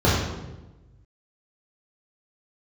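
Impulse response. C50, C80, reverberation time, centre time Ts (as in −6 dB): 0.5 dB, 3.0 dB, 1.1 s, 72 ms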